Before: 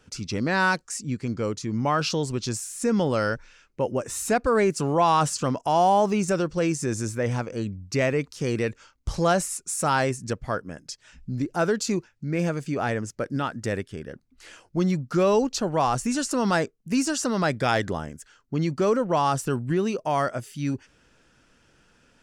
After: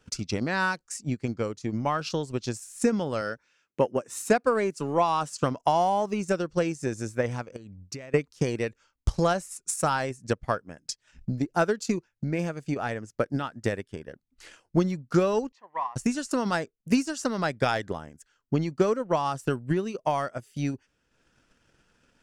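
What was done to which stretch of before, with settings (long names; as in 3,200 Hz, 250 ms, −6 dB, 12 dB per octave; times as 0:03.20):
0:03.21–0:05.42: high-pass filter 150 Hz
0:07.56–0:08.14: downward compressor 5 to 1, threshold −35 dBFS
0:15.52–0:15.96: pair of resonant band-passes 1,400 Hz, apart 0.91 octaves
whole clip: transient designer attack +11 dB, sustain −7 dB; level −6 dB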